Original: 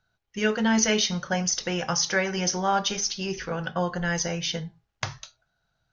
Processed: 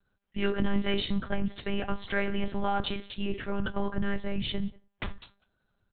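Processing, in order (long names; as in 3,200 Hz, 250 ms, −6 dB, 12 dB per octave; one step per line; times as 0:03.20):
parametric band 150 Hz +9.5 dB 0.95 octaves
in parallel at +0.5 dB: brickwall limiter −17 dBFS, peak gain reduction 8.5 dB
on the sum: soft clipping −8 dBFS, distortion −24 dB
far-end echo of a speakerphone 190 ms, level −23 dB
on a send at −18 dB: convolution reverb RT60 0.35 s, pre-delay 8 ms
on the sum: one-pitch LPC vocoder at 8 kHz 200 Hz
level −9 dB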